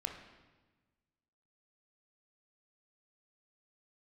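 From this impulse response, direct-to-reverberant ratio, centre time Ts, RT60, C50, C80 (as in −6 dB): 3.5 dB, 30 ms, 1.3 s, 6.0 dB, 8.5 dB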